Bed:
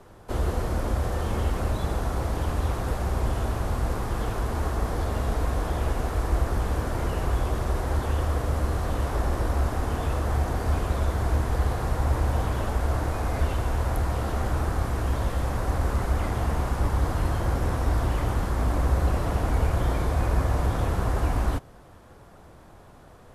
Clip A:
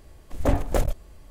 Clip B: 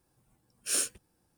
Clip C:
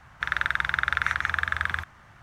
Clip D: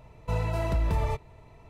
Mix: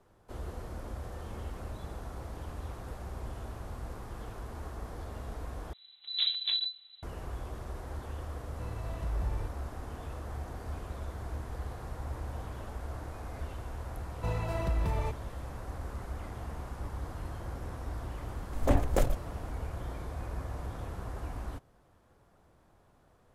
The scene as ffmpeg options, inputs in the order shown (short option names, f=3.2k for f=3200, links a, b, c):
-filter_complex "[1:a]asplit=2[a][b];[4:a]asplit=2[c][d];[0:a]volume=-14.5dB[e];[a]lowpass=f=3.4k:t=q:w=0.5098,lowpass=f=3.4k:t=q:w=0.6013,lowpass=f=3.4k:t=q:w=0.9,lowpass=f=3.4k:t=q:w=2.563,afreqshift=-4000[f];[c]asubboost=boost=8.5:cutoff=160[g];[e]asplit=2[h][i];[h]atrim=end=5.734[j];[f]atrim=end=1.3,asetpts=PTS-STARTPTS,volume=-10dB[k];[i]atrim=start=7.026[l];[g]atrim=end=1.69,asetpts=PTS-STARTPTS,volume=-16.5dB,afade=t=in:d=0.004:c=hsin,afade=t=out:st=1.686:d=0.004:c=hsin,adelay=8310[m];[d]atrim=end=1.69,asetpts=PTS-STARTPTS,volume=-4.5dB,afade=t=in:d=0.004:c=hsin,afade=t=out:st=1.686:d=0.004:c=hsin,adelay=13950[n];[b]atrim=end=1.3,asetpts=PTS-STARTPTS,volume=-4dB,afade=t=in:d=0.004:c=hsin,afade=t=out:st=1.296:d=0.004:c=hsin,adelay=18220[o];[j][k]acrossfade=d=0.004:c1=hsin:c2=hsin[p];[p][l]acrossfade=d=0.004:c1=hsin:c2=hsin[q];[q][m][n][o]amix=inputs=4:normalize=0"